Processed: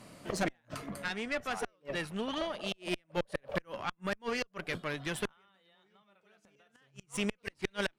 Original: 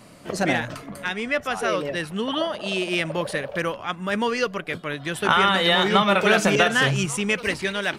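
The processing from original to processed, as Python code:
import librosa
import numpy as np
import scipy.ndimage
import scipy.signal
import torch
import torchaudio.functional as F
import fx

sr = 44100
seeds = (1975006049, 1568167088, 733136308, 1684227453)

y = fx.gate_flip(x, sr, shuts_db=-13.0, range_db=-40)
y = fx.tube_stage(y, sr, drive_db=19.0, bias=0.7)
y = fx.rider(y, sr, range_db=5, speed_s=0.5)
y = y * librosa.db_to_amplitude(-3.5)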